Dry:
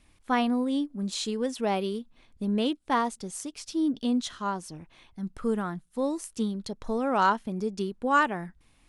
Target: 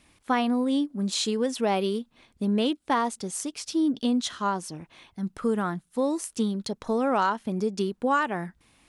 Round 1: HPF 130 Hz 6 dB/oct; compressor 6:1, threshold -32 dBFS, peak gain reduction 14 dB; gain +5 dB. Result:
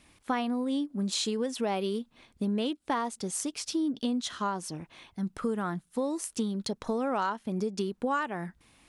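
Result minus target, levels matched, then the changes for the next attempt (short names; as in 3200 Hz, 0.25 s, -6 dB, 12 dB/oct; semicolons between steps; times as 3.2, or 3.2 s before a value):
compressor: peak gain reduction +6 dB
change: compressor 6:1, threshold -25 dBFS, peak gain reduction 8.5 dB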